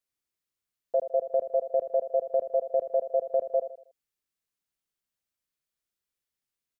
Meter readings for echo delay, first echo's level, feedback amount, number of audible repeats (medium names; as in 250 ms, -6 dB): 79 ms, -11.0 dB, 38%, 3